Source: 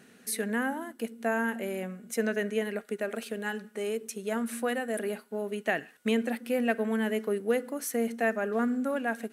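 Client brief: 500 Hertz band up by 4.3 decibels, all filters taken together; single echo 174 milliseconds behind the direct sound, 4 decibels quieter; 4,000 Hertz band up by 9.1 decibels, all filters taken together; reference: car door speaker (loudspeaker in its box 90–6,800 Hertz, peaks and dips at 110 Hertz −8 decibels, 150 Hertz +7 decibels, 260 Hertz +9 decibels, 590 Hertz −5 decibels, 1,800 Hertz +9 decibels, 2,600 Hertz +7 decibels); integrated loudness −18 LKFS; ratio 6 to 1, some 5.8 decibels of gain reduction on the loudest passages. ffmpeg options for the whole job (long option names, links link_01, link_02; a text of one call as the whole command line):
ffmpeg -i in.wav -af "equalizer=frequency=500:width_type=o:gain=6,equalizer=frequency=4000:width_type=o:gain=9,acompressor=threshold=-24dB:ratio=6,highpass=90,equalizer=frequency=110:width_type=q:width=4:gain=-8,equalizer=frequency=150:width_type=q:width=4:gain=7,equalizer=frequency=260:width_type=q:width=4:gain=9,equalizer=frequency=590:width_type=q:width=4:gain=-5,equalizer=frequency=1800:width_type=q:width=4:gain=9,equalizer=frequency=2600:width_type=q:width=4:gain=7,lowpass=frequency=6800:width=0.5412,lowpass=frequency=6800:width=1.3066,aecho=1:1:174:0.631,volume=8.5dB" out.wav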